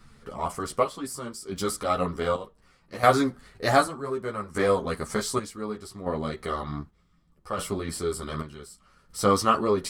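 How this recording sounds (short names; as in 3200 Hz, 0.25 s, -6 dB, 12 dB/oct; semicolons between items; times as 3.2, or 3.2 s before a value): chopped level 0.66 Hz, depth 65%, duty 55%; a shimmering, thickened sound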